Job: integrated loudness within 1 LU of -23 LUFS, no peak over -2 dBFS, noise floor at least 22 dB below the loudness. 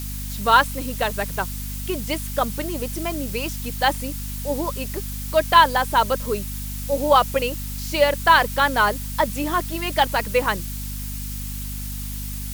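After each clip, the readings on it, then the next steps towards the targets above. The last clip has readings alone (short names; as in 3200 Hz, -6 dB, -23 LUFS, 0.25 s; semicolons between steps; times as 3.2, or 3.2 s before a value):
hum 50 Hz; harmonics up to 250 Hz; hum level -29 dBFS; noise floor -30 dBFS; noise floor target -44 dBFS; loudness -22.0 LUFS; peak -2.5 dBFS; loudness target -23.0 LUFS
-> de-hum 50 Hz, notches 5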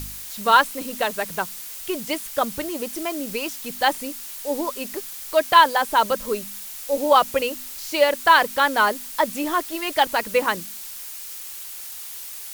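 hum none; noise floor -36 dBFS; noise floor target -44 dBFS
-> denoiser 8 dB, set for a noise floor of -36 dBFS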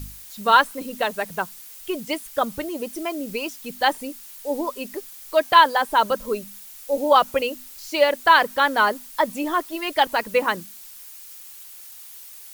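noise floor -42 dBFS; noise floor target -44 dBFS
-> denoiser 6 dB, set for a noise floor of -42 dBFS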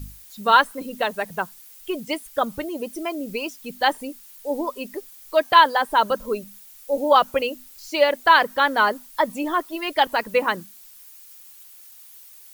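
noise floor -47 dBFS; loudness -21.5 LUFS; peak -3.0 dBFS; loudness target -23.0 LUFS
-> gain -1.5 dB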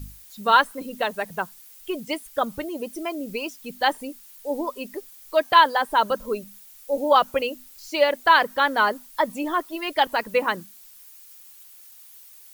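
loudness -23.0 LUFS; peak -4.5 dBFS; noise floor -48 dBFS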